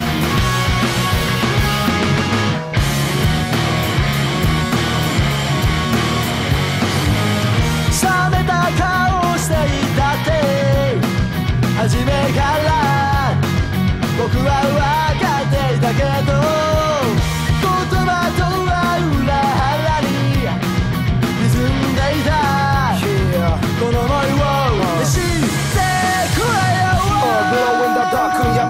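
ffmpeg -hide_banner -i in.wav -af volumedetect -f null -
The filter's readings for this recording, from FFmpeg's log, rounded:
mean_volume: -15.6 dB
max_volume: -3.5 dB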